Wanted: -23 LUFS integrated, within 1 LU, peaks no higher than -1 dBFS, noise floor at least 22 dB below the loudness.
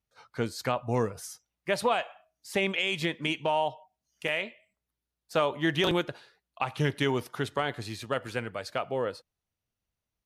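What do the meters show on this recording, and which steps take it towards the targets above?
dropouts 1; longest dropout 2.7 ms; loudness -30.5 LUFS; peak level -14.0 dBFS; loudness target -23.0 LUFS
-> interpolate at 4.28 s, 2.7 ms; trim +7.5 dB

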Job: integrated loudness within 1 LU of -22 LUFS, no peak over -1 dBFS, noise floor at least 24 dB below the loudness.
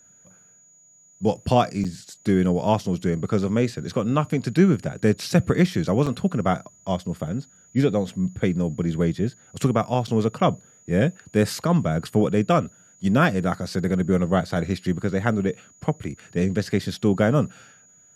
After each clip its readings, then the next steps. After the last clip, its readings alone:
dropouts 3; longest dropout 5.9 ms; steady tone 6.8 kHz; tone level -52 dBFS; loudness -23.5 LUFS; peak level -4.5 dBFS; loudness target -22.0 LUFS
-> interpolate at 1.84/6.06/10.07 s, 5.9 ms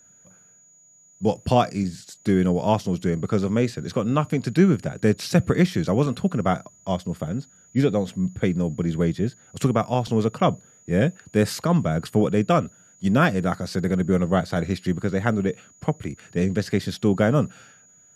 dropouts 0; steady tone 6.8 kHz; tone level -52 dBFS
-> band-stop 6.8 kHz, Q 30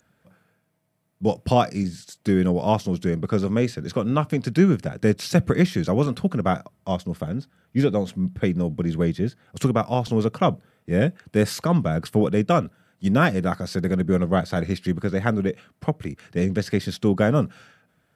steady tone not found; loudness -23.5 LUFS; peak level -4.5 dBFS; loudness target -22.0 LUFS
-> trim +1.5 dB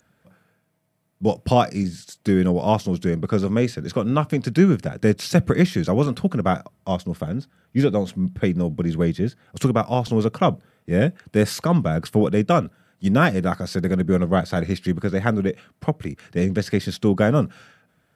loudness -22.0 LUFS; peak level -3.0 dBFS; noise floor -66 dBFS

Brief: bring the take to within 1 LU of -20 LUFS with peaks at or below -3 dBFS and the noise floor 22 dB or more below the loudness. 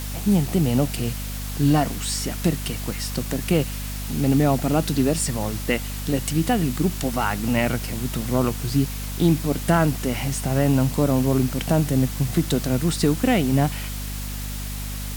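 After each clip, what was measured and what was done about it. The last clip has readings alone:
hum 50 Hz; highest harmonic 250 Hz; hum level -28 dBFS; noise floor -30 dBFS; noise floor target -45 dBFS; loudness -23.0 LUFS; peak level -6.0 dBFS; loudness target -20.0 LUFS
-> hum notches 50/100/150/200/250 Hz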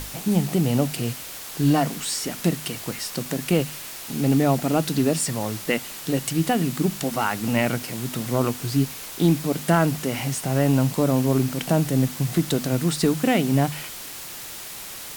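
hum not found; noise floor -37 dBFS; noise floor target -46 dBFS
-> noise reduction 9 dB, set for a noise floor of -37 dBFS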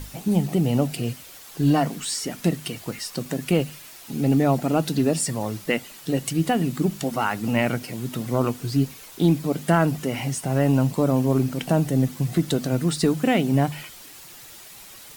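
noise floor -44 dBFS; noise floor target -46 dBFS
-> noise reduction 6 dB, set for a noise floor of -44 dBFS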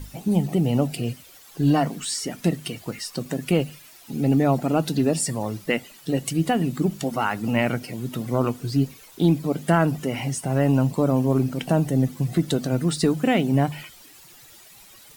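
noise floor -49 dBFS; loudness -23.5 LUFS; peak level -7.0 dBFS; loudness target -20.0 LUFS
-> trim +3.5 dB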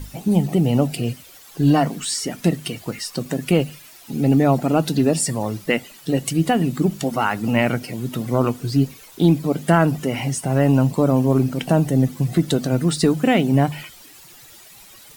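loudness -20.0 LUFS; peak level -3.5 dBFS; noise floor -45 dBFS

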